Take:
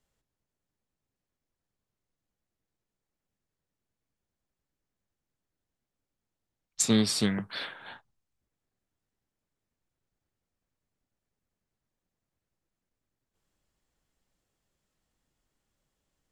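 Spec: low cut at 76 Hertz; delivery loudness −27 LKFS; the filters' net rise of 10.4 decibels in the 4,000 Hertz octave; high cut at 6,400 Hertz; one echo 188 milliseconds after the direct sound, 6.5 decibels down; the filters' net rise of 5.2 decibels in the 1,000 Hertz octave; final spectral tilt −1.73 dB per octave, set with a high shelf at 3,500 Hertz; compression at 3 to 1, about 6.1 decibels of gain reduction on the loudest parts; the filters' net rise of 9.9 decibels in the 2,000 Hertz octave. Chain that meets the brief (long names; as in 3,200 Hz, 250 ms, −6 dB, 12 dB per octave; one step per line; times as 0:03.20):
high-pass filter 76 Hz
low-pass filter 6,400 Hz
parametric band 1,000 Hz +3 dB
parametric band 2,000 Hz +7.5 dB
high-shelf EQ 3,500 Hz +8.5 dB
parametric band 4,000 Hz +5.5 dB
downward compressor 3 to 1, threshold −25 dBFS
single-tap delay 188 ms −6.5 dB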